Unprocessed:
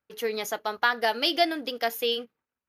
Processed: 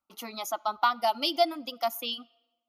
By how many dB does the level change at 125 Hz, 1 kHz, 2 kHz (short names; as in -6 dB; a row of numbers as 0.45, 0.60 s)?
n/a, +1.5 dB, -9.0 dB